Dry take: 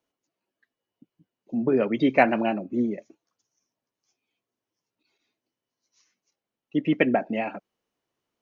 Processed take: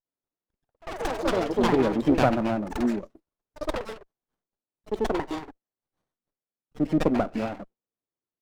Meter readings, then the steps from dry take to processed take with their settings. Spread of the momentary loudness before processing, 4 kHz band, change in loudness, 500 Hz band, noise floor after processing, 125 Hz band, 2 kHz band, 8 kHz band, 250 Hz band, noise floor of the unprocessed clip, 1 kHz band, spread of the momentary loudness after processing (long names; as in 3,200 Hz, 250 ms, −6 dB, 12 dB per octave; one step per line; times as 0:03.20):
12 LU, +4.5 dB, −2.0 dB, +0.5 dB, below −85 dBFS, +4.5 dB, −4.5 dB, can't be measured, +0.5 dB, below −85 dBFS, 0.0 dB, 15 LU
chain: noise gate −49 dBFS, range −13 dB
delay with pitch and tempo change per echo 93 ms, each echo +6 semitones, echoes 3
multiband delay without the direct sound highs, lows 50 ms, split 960 Hz
windowed peak hold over 17 samples